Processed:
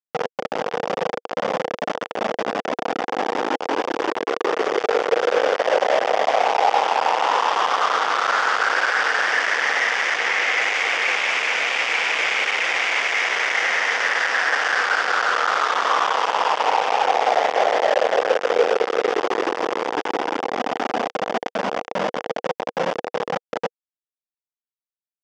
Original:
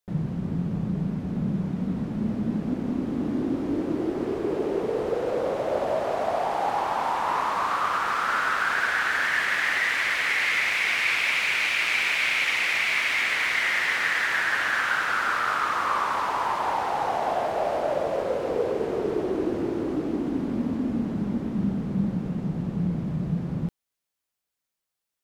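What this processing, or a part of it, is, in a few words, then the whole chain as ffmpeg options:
hand-held game console: -filter_complex "[0:a]acrusher=bits=3:mix=0:aa=0.000001,highpass=460,equalizer=f=480:t=q:w=4:g=8,equalizer=f=770:t=q:w=4:g=5,equalizer=f=2400:t=q:w=4:g=-3,equalizer=f=4100:t=q:w=4:g=-10,lowpass=f=5000:w=0.5412,lowpass=f=5000:w=1.3066,asettb=1/sr,asplit=3[s0][s1][s2];[s0]atrim=end=10.174[s3];[s1]atrim=start=10.17:end=10.57,asetpts=PTS-STARTPTS,afade=t=in:d=0.004:c=qsin,afade=t=out:st=0.396:d=0.004:c=qsin,lowpass=9000[s4];[s2]atrim=start=10.566[s5];[s3][s4]acrossfade=d=0.004:c1=hsin:c2=qsin[s6];[s6][s5]acrossfade=d=0.004:c1=qsin:c2=hsin,volume=1.68"

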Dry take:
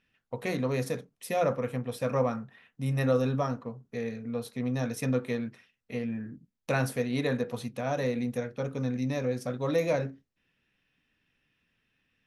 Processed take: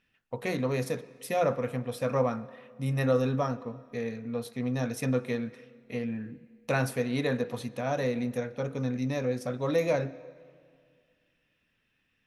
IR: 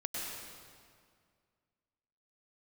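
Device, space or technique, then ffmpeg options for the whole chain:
filtered reverb send: -filter_complex "[0:a]asplit=2[s0][s1];[s1]highpass=f=160:w=0.5412,highpass=f=160:w=1.3066,lowpass=5400[s2];[1:a]atrim=start_sample=2205[s3];[s2][s3]afir=irnorm=-1:irlink=0,volume=0.106[s4];[s0][s4]amix=inputs=2:normalize=0"

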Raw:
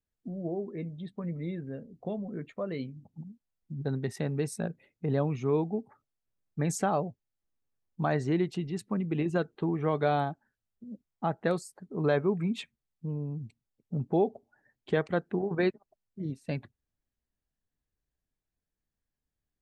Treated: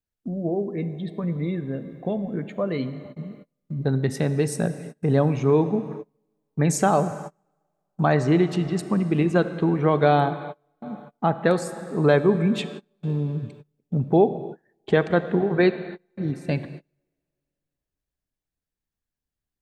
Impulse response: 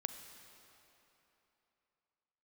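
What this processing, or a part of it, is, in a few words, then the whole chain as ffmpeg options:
keyed gated reverb: -filter_complex "[0:a]asplit=3[s0][s1][s2];[1:a]atrim=start_sample=2205[s3];[s1][s3]afir=irnorm=-1:irlink=0[s4];[s2]apad=whole_len=865142[s5];[s4][s5]sidechaingate=range=0.0224:threshold=0.00126:ratio=16:detection=peak,volume=2.51[s6];[s0][s6]amix=inputs=2:normalize=0,volume=0.841"

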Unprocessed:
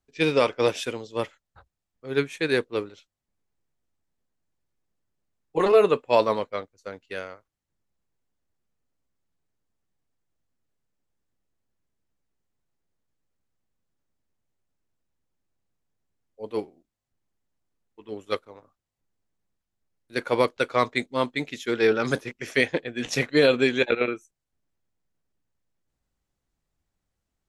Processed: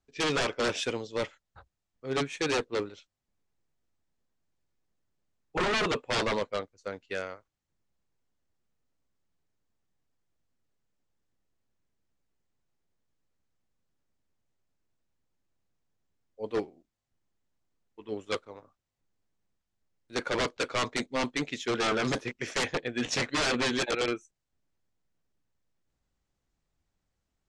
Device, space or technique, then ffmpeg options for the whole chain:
synthesiser wavefolder: -af "aeval=exprs='0.0794*(abs(mod(val(0)/0.0794+3,4)-2)-1)':c=same,lowpass=f=8200:w=0.5412,lowpass=f=8200:w=1.3066"

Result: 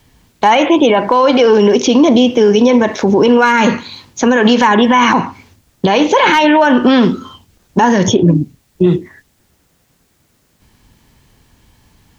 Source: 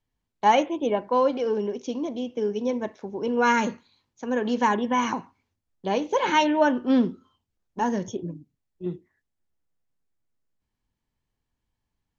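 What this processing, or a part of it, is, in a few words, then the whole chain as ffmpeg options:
mastering chain: -filter_complex "[0:a]highpass=f=52:p=1,equalizer=f=830:t=o:w=2.6:g=-2.5,acrossover=split=750|4100[s0][s1][s2];[s0]acompressor=threshold=0.0178:ratio=4[s3];[s1]acompressor=threshold=0.0501:ratio=4[s4];[s2]acompressor=threshold=0.00126:ratio=4[s5];[s3][s4][s5]amix=inputs=3:normalize=0,acompressor=threshold=0.0126:ratio=1.5,asoftclip=type=hard:threshold=0.0631,alimiter=level_in=53.1:limit=0.891:release=50:level=0:latency=1,volume=0.891"

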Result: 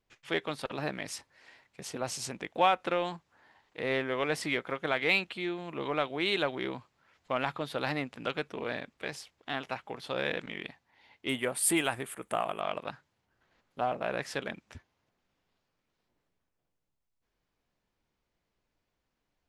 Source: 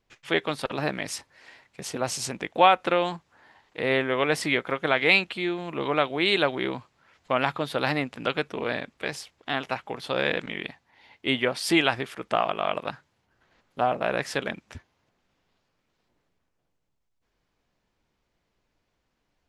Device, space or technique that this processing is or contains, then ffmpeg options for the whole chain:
parallel distortion: -filter_complex "[0:a]asplit=2[s0][s1];[s1]asoftclip=type=hard:threshold=0.0841,volume=0.224[s2];[s0][s2]amix=inputs=2:normalize=0,asettb=1/sr,asplit=3[s3][s4][s5];[s3]atrim=end=11.294[s6];[s4]atrim=start=11.29:end=12.61,asetpts=PTS-STARTPTS,afade=t=in:d=0.004:c=qsin,afade=t=out:st=1.316:d=0.004:c=qsin,highshelf=f=7000:t=q:w=3:g=10.5[s7];[s5]atrim=start=12.606[s8];[s6][s7]acrossfade=d=0.004:c1=hsin:c2=qsin[s9];[s9][s8]acrossfade=d=0.004:c1=qsin:c2=hsin,volume=0.398"

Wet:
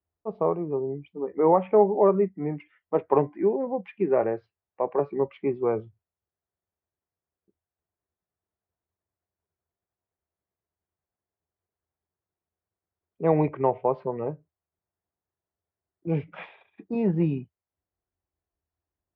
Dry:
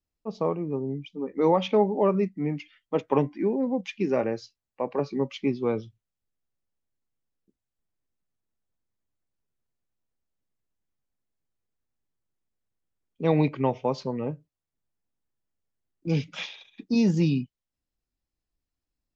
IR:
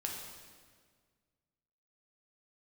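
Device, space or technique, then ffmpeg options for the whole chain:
bass cabinet: -filter_complex "[0:a]highpass=70,equalizer=f=83:t=q:w=4:g=10,equalizer=f=130:t=q:w=4:g=-5,equalizer=f=250:t=q:w=4:g=-9,equalizer=f=390:t=q:w=4:g=5,equalizer=f=690:t=q:w=4:g=6,equalizer=f=990:t=q:w=4:g=3,lowpass=f=2000:w=0.5412,lowpass=f=2000:w=1.3066,asettb=1/sr,asplit=3[s0][s1][s2];[s0]atrim=end=1.254[s3];[s1]atrim=start=1.25:end=2.6,asetpts=PTS-STARTPTS,afade=t=in:d=0.004:c=qsin,afade=t=out:st=1.346:d=0.004:c=qsin,lowpass=f=2500:w=0.5412,lowpass=f=2500:w=1.3066[s4];[s2]atrim=start=2.596[s5];[s3][s4]acrossfade=d=0.004:c1=hsin:c2=qsin[s6];[s6][s5]acrossfade=d=0.004:c1=qsin:c2=hsin"

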